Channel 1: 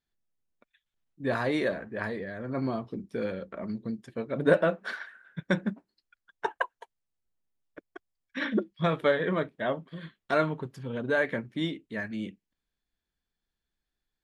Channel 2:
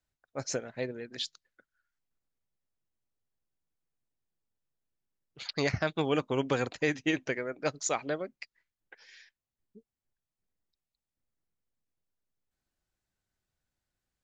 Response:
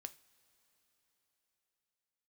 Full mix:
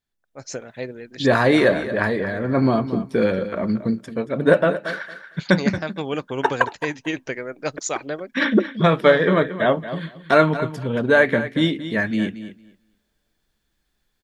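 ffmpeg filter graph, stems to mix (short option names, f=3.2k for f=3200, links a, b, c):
-filter_complex "[0:a]volume=1dB,asplit=3[a][b][c];[b]volume=-22dB[d];[c]volume=-12.5dB[e];[1:a]volume=-7dB[f];[2:a]atrim=start_sample=2205[g];[d][g]afir=irnorm=-1:irlink=0[h];[e]aecho=0:1:228|456|684:1|0.16|0.0256[i];[a][f][h][i]amix=inputs=4:normalize=0,dynaudnorm=f=140:g=7:m=11.5dB"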